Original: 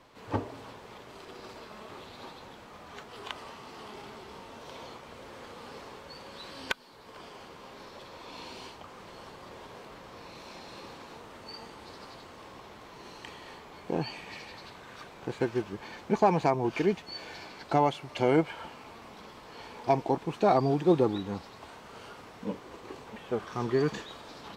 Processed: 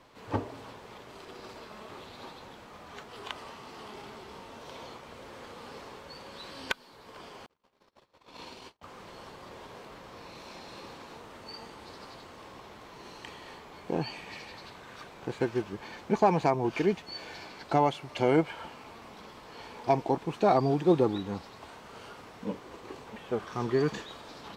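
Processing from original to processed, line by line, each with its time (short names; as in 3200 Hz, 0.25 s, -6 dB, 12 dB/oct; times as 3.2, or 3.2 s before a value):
7.46–8.83 gate -45 dBFS, range -41 dB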